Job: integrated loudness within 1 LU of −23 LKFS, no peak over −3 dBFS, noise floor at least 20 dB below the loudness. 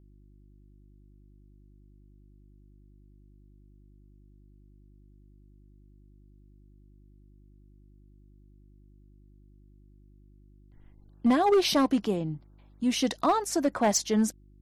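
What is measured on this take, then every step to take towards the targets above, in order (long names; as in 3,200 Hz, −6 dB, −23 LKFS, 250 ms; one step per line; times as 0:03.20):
share of clipped samples 0.5%; peaks flattened at −17.5 dBFS; mains hum 50 Hz; hum harmonics up to 350 Hz; level of the hum −53 dBFS; integrated loudness −26.0 LKFS; sample peak −17.5 dBFS; target loudness −23.0 LKFS
→ clipped peaks rebuilt −17.5 dBFS
hum removal 50 Hz, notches 7
level +3 dB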